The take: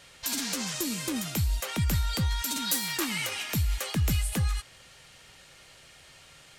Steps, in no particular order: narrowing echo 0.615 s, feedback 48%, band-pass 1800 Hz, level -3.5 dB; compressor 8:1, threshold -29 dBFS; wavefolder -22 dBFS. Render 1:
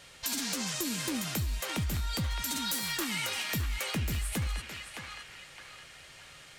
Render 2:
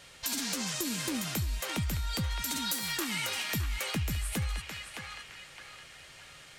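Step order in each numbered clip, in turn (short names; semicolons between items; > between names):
wavefolder > narrowing echo > compressor; narrowing echo > compressor > wavefolder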